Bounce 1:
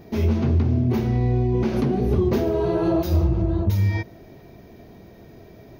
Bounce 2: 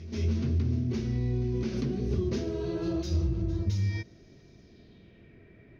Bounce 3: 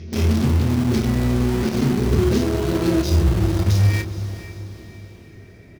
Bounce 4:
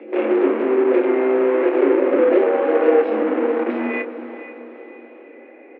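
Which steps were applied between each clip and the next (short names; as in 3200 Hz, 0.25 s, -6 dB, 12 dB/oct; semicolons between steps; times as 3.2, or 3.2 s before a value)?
bell 810 Hz -12.5 dB 1.1 oct; reverse echo 0.211 s -15 dB; low-pass sweep 5800 Hz -> 2200 Hz, 4.59–5.39; gain -8 dB
in parallel at -7 dB: bit-crush 5-bit; on the sum: doubler 28 ms -9 dB; diffused feedback echo 0.467 s, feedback 46%, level -12 dB; gain +7.5 dB
mistuned SSB +140 Hz 160–2300 Hz; gain +5 dB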